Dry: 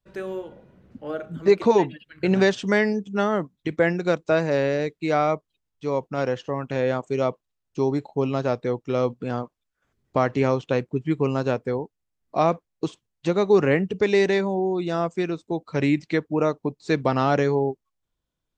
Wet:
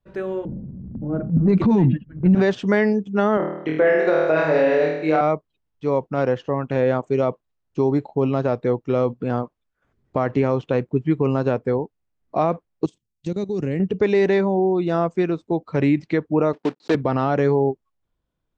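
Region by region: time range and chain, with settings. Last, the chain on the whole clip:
0.45–2.35 low-pass opened by the level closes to 390 Hz, open at -14 dBFS + resonant low shelf 310 Hz +14 dB, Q 1.5 + transient shaper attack -11 dB, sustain +2 dB
3.37–5.21 tone controls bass -12 dB, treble -5 dB + flutter echo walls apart 4.4 m, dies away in 0.83 s
12.85–13.8 EQ curve 220 Hz 0 dB, 1200 Hz -17 dB, 2000 Hz -9 dB, 7700 Hz +9 dB + level quantiser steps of 14 dB
16.53–16.95 block floating point 3-bit + Chebyshev band-pass 250–5100 Hz
whole clip: LPF 1600 Hz 6 dB/oct; limiter -14 dBFS; gain +5 dB

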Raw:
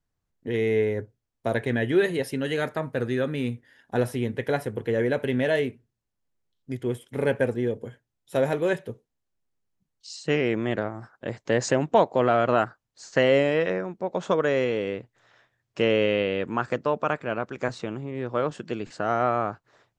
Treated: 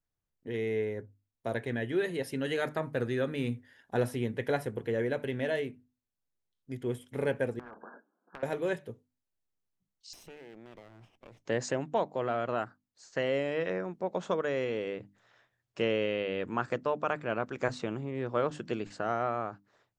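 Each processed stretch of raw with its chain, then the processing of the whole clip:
7.59–8.43 brick-wall FIR band-pass 190–1700 Hz + compressor 5:1, threshold -25 dBFS + spectral compressor 10:1
10.13–11.45 minimum comb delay 0.33 ms + compressor 3:1, threshold -44 dBFS
whole clip: notches 50/100/150/200/250/300 Hz; vocal rider within 4 dB 0.5 s; gain -6.5 dB

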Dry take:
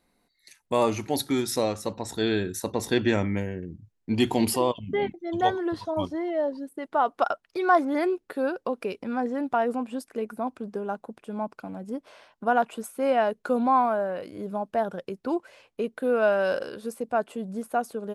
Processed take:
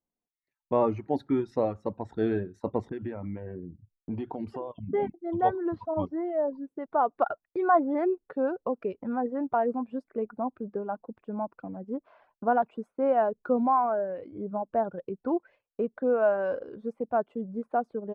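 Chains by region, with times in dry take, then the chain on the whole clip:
2.89–4.91 low-pass opened by the level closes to 570 Hz, open at -19.5 dBFS + compressor, threshold -29 dBFS
whole clip: LPF 1100 Hz 12 dB/oct; reverb removal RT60 0.86 s; gate with hold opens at -51 dBFS

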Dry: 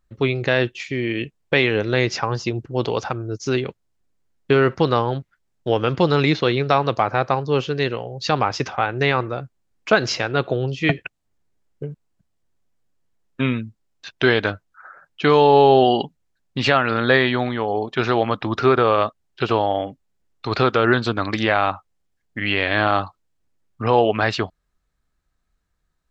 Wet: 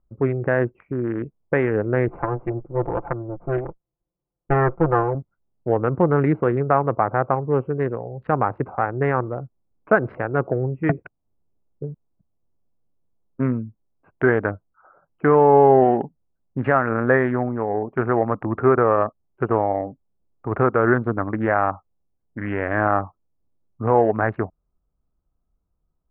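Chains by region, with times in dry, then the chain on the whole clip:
2.08–5.15 minimum comb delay 5.8 ms + bell 220 Hz -12 dB 0.26 oct
whole clip: Wiener smoothing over 25 samples; steep low-pass 1800 Hz 36 dB/oct

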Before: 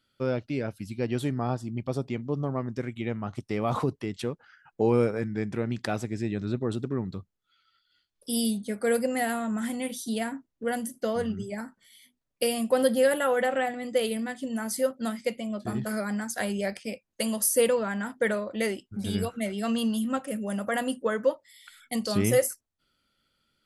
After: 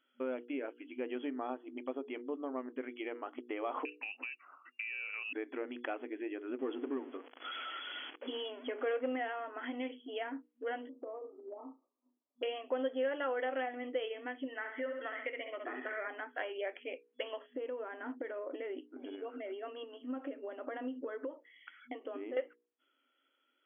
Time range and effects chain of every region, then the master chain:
3.85–5.33 compressor, threshold -33 dBFS + inverted band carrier 2800 Hz
6.59–9.16 zero-crossing step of -43 dBFS + sample leveller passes 1 + upward compressor, threshold -32 dBFS
10.89–12.43 brick-wall FIR low-pass 1300 Hz + flutter echo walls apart 5.8 m, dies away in 0.22 s + compressor, threshold -38 dBFS
14.48–16.08 bell 1900 Hz +15 dB 0.51 oct + flutter echo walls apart 11.4 m, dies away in 0.49 s + compressor 2:1, threshold -31 dBFS
17.53–22.37 compressor 10:1, threshold -36 dBFS + LPF 2900 Hz + low shelf 420 Hz +12 dB
whole clip: notches 60/120/180/240/300/360/420/480 Hz; FFT band-pass 240–3400 Hz; compressor 2:1, threshold -38 dBFS; gain -1.5 dB

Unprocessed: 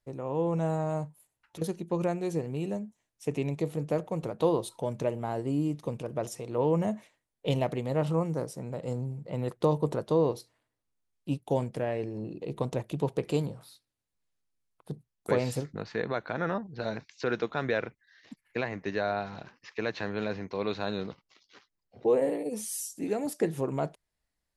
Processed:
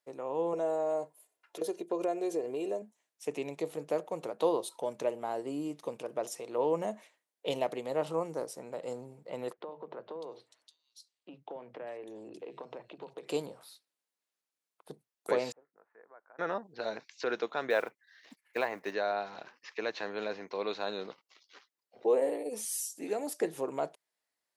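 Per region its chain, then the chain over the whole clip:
0.53–2.82 bell 500 Hz +11 dB 0.7 oct + comb 2.9 ms, depth 50% + compressor 2:1, threshold -28 dBFS
9.53–13.27 compressor 16:1, threshold -34 dBFS + air absorption 66 m + three bands offset in time mids, lows, highs 50/600 ms, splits 190/3500 Hz
15.52–16.39 Bessel low-pass 880 Hz, order 6 + differentiator
17.7–18.95 block floating point 7-bit + dynamic EQ 930 Hz, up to +6 dB, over -42 dBFS, Q 0.89
whole clip: dynamic EQ 1800 Hz, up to -3 dB, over -42 dBFS, Q 0.88; HPF 410 Hz 12 dB/oct

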